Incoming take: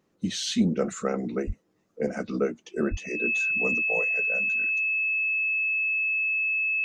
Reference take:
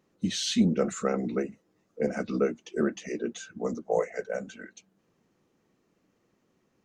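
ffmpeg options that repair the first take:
ffmpeg -i in.wav -filter_complex "[0:a]bandreject=frequency=2600:width=30,asplit=3[link_01][link_02][link_03];[link_01]afade=type=out:start_time=1.46:duration=0.02[link_04];[link_02]highpass=frequency=140:width=0.5412,highpass=frequency=140:width=1.3066,afade=type=in:start_time=1.46:duration=0.02,afade=type=out:start_time=1.58:duration=0.02[link_05];[link_03]afade=type=in:start_time=1.58:duration=0.02[link_06];[link_04][link_05][link_06]amix=inputs=3:normalize=0,asplit=3[link_07][link_08][link_09];[link_07]afade=type=out:start_time=2.9:duration=0.02[link_10];[link_08]highpass=frequency=140:width=0.5412,highpass=frequency=140:width=1.3066,afade=type=in:start_time=2.9:duration=0.02,afade=type=out:start_time=3.02:duration=0.02[link_11];[link_09]afade=type=in:start_time=3.02:duration=0.02[link_12];[link_10][link_11][link_12]amix=inputs=3:normalize=0,asetnsamples=nb_out_samples=441:pad=0,asendcmd='3.82 volume volume 5.5dB',volume=0dB" out.wav

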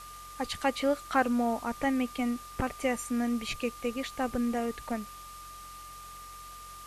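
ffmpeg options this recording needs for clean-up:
ffmpeg -i in.wav -af "adeclick=threshold=4,bandreject=frequency=45:width_type=h:width=4,bandreject=frequency=90:width_type=h:width=4,bandreject=frequency=135:width_type=h:width=4,bandreject=frequency=180:width_type=h:width=4,bandreject=frequency=1200:width=30,afwtdn=0.0032" out.wav

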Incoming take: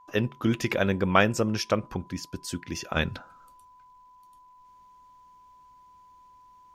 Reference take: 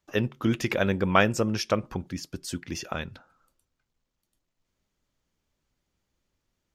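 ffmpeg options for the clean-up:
ffmpeg -i in.wav -af "bandreject=frequency=1000:width=30,asetnsamples=nb_out_samples=441:pad=0,asendcmd='2.96 volume volume -8.5dB',volume=0dB" out.wav

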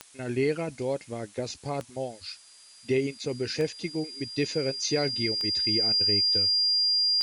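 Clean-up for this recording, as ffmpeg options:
ffmpeg -i in.wav -af "adeclick=threshold=4,bandreject=frequency=4800:width=30,afftdn=noise_reduction=21:noise_floor=-52" out.wav

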